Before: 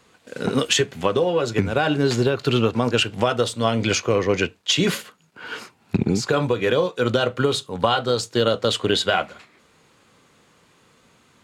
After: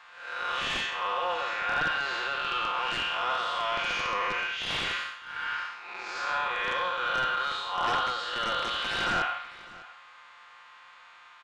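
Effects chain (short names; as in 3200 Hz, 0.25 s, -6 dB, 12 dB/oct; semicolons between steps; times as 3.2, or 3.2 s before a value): time blur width 0.233 s; HPF 1000 Hz 24 dB/oct; high shelf 5200 Hz -4.5 dB; comb 5.7 ms, depth 91%; in parallel at 0 dB: compressor 8:1, threshold -44 dBFS, peak gain reduction 20 dB; on the sum: wrapped overs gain 19 dB; short-mantissa float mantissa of 2-bit; soft clip -24.5 dBFS, distortion -15 dB; tape spacing loss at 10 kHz 29 dB; on a send: echo 0.602 s -20 dB; on the sum: gain +8 dB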